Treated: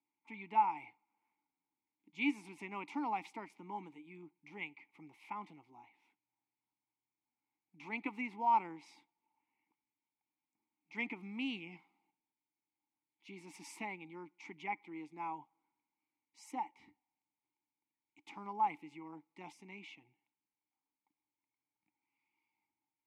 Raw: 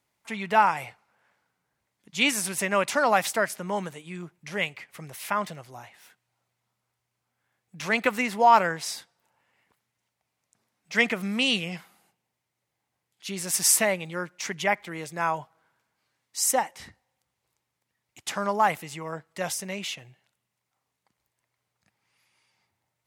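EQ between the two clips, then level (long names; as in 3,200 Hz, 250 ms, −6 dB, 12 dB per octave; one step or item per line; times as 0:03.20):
formant filter u
−2.0 dB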